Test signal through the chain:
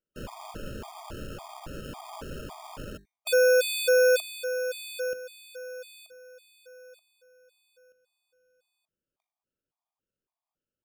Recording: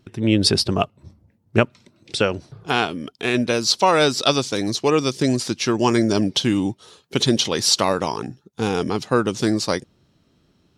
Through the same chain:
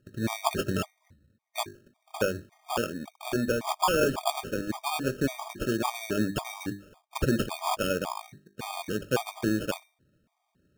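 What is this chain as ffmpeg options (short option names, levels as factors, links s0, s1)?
-af "bandreject=f=50:t=h:w=6,bandreject=f=100:t=h:w=6,bandreject=f=150:t=h:w=6,bandreject=f=200:t=h:w=6,bandreject=f=250:t=h:w=6,bandreject=f=300:t=h:w=6,bandreject=f=350:t=h:w=6,bandreject=f=400:t=h:w=6,acrusher=samples=22:mix=1:aa=0.000001,afftfilt=real='re*gt(sin(2*PI*1.8*pts/sr)*(1-2*mod(floor(b*sr/1024/630),2)),0)':imag='im*gt(sin(2*PI*1.8*pts/sr)*(1-2*mod(floor(b*sr/1024/630),2)),0)':win_size=1024:overlap=0.75,volume=0.501"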